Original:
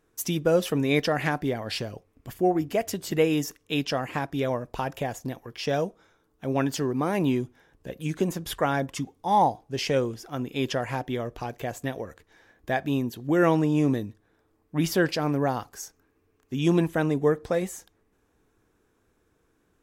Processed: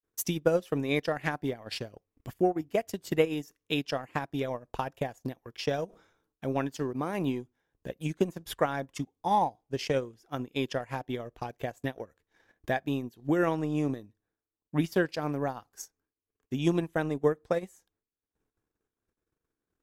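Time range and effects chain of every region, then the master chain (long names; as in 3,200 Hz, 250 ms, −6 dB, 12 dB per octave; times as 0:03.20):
0:05.85–0:06.55: transient designer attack −1 dB, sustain +5 dB + level that may fall only so fast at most 70 dB per second
whole clip: downward expander −59 dBFS; transient designer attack +7 dB, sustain −12 dB; level −7 dB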